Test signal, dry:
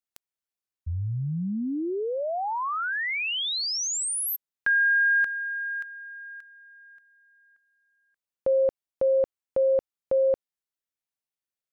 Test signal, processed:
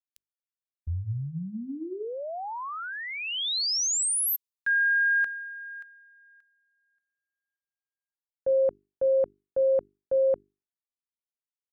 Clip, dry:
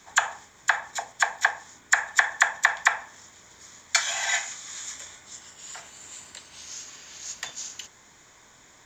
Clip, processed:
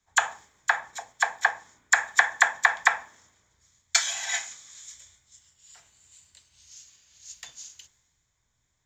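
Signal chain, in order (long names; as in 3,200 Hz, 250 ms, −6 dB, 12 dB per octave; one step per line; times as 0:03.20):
mains-hum notches 50/100/150/200/250/300/350/400 Hz
multiband upward and downward expander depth 70%
level −4 dB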